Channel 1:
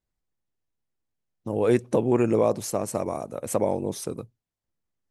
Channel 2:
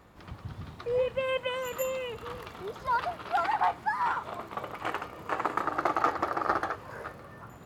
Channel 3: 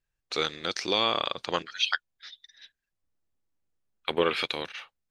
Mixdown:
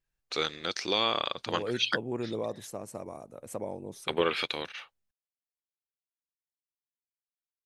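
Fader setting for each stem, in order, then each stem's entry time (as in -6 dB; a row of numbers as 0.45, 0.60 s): -12.5 dB, off, -2.0 dB; 0.00 s, off, 0.00 s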